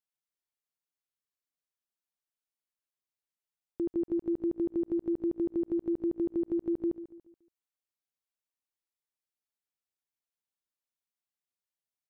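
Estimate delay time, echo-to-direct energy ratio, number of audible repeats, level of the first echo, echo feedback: 142 ms, −13.0 dB, 3, −14.0 dB, 40%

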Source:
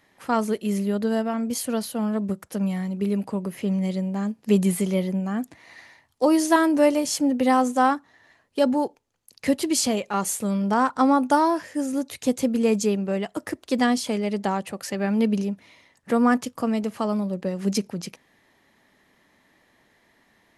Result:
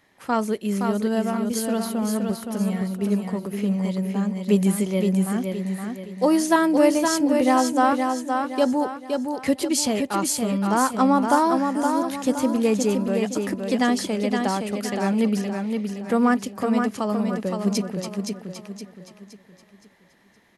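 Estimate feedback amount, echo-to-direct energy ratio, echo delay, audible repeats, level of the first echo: 39%, −4.5 dB, 518 ms, 4, −5.0 dB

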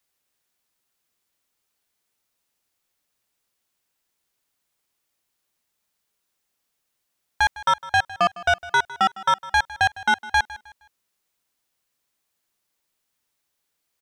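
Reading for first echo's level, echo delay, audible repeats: −18.0 dB, 156 ms, 2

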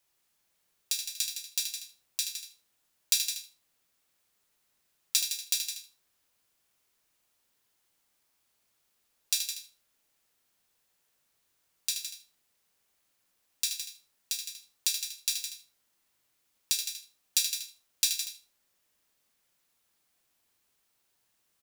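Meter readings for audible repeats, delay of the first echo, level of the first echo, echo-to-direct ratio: 4, 77 ms, −7.5 dB, −5.0 dB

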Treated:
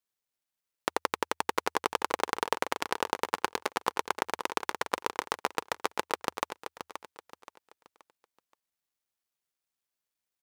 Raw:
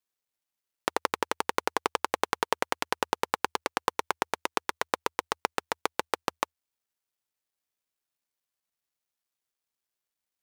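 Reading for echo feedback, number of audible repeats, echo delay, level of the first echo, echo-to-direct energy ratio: 34%, 3, 526 ms, −9.5 dB, −9.0 dB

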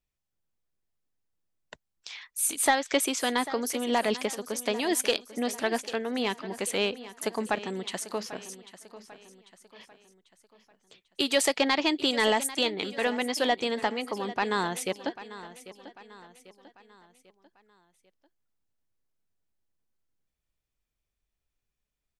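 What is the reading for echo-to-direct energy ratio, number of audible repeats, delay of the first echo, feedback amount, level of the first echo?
−14.5 dB, 3, 794 ms, 46%, −15.5 dB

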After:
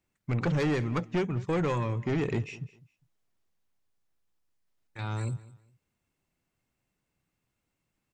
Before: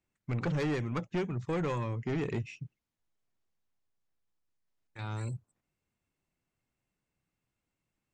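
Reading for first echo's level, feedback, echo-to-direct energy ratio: −20.0 dB, 25%, −19.5 dB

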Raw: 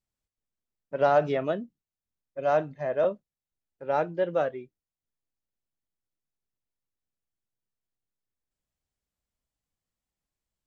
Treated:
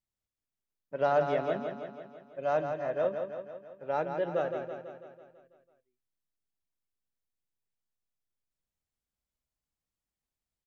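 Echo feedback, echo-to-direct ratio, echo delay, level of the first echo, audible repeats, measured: 58%, −4.5 dB, 165 ms, −6.5 dB, 7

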